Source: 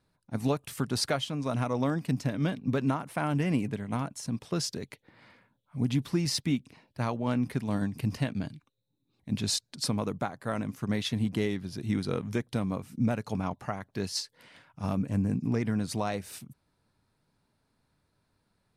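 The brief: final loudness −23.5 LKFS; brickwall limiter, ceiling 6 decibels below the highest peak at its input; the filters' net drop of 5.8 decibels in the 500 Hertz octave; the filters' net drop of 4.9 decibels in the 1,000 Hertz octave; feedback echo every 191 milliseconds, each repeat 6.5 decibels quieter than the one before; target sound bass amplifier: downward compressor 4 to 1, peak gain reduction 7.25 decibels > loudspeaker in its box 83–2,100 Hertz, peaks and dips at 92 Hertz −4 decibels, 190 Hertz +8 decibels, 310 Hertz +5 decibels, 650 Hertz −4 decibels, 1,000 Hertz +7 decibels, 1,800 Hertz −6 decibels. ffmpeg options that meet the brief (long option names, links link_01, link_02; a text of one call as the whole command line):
ffmpeg -i in.wav -af "equalizer=frequency=500:width_type=o:gain=-6.5,equalizer=frequency=1000:width_type=o:gain=-7,alimiter=limit=-23dB:level=0:latency=1,aecho=1:1:191|382|573|764|955|1146:0.473|0.222|0.105|0.0491|0.0231|0.0109,acompressor=threshold=-32dB:ratio=4,highpass=frequency=83:width=0.5412,highpass=frequency=83:width=1.3066,equalizer=frequency=92:width_type=q:width=4:gain=-4,equalizer=frequency=190:width_type=q:width=4:gain=8,equalizer=frequency=310:width_type=q:width=4:gain=5,equalizer=frequency=650:width_type=q:width=4:gain=-4,equalizer=frequency=1000:width_type=q:width=4:gain=7,equalizer=frequency=1800:width_type=q:width=4:gain=-6,lowpass=frequency=2100:width=0.5412,lowpass=frequency=2100:width=1.3066,volume=11dB" out.wav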